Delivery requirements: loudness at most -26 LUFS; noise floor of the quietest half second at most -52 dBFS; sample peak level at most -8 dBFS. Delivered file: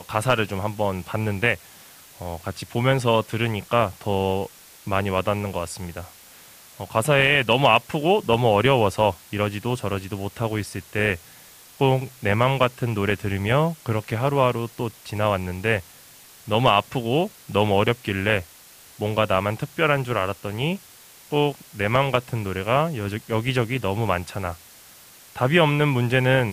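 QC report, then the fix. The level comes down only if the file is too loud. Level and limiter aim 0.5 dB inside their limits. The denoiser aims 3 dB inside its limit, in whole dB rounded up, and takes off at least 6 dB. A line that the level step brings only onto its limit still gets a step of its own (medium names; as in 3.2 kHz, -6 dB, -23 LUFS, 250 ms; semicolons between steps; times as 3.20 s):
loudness -23.0 LUFS: fail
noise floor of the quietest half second -48 dBFS: fail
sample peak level -4.5 dBFS: fail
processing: noise reduction 6 dB, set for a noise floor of -48 dBFS; trim -3.5 dB; peak limiter -8.5 dBFS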